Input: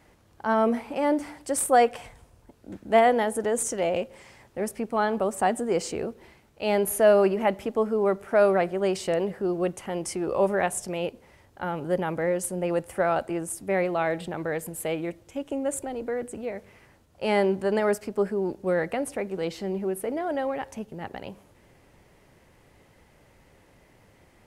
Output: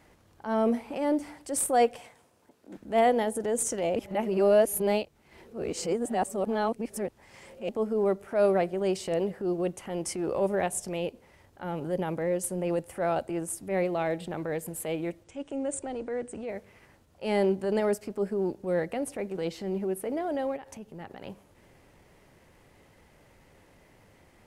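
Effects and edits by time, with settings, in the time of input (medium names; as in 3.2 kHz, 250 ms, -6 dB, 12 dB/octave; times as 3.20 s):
1.99–2.77 s: high-pass 210 Hz
3.96–7.69 s: reverse
15.24–16.49 s: Chebyshev low-pass 9.7 kHz, order 8
20.56–21.23 s: compression, threshold -36 dBFS
whole clip: hum notches 60/120 Hz; dynamic bell 1.4 kHz, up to -7 dB, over -38 dBFS, Q 0.88; transient shaper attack -7 dB, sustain -3 dB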